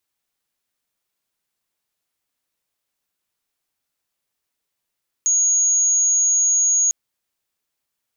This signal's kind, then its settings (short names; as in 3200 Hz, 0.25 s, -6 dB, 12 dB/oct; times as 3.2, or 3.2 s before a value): tone sine 6660 Hz -14 dBFS 1.65 s